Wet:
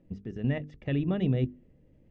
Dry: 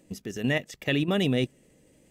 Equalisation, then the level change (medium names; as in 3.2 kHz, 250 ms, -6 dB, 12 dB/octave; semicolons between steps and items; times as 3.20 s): distance through air 160 m; RIAA curve playback; hum notches 50/100/150/200/250/300/350/400/450 Hz; -8.0 dB